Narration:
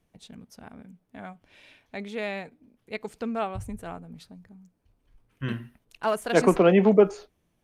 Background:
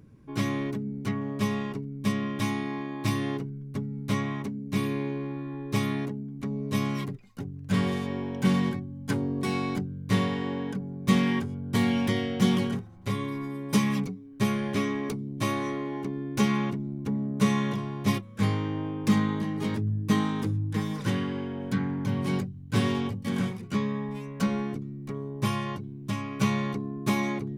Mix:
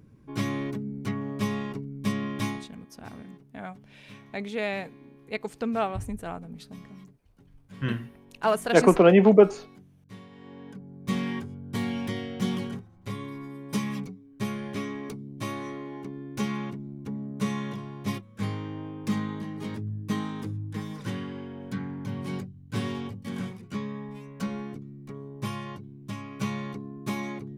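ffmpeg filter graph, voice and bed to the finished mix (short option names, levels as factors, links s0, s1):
-filter_complex "[0:a]adelay=2400,volume=1.26[s0];[1:a]volume=5.62,afade=t=out:st=2.45:d=0.24:silence=0.0944061,afade=t=in:st=10.3:d=0.93:silence=0.158489[s1];[s0][s1]amix=inputs=2:normalize=0"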